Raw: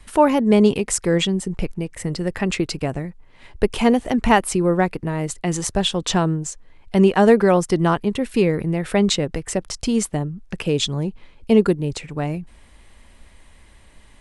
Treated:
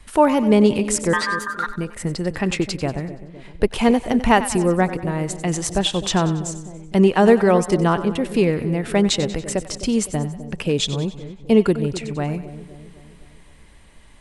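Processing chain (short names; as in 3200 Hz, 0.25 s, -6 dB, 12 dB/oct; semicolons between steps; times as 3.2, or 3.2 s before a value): 1.13–1.67 ring modulator 1400 Hz; split-band echo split 660 Hz, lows 0.256 s, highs 94 ms, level -13 dB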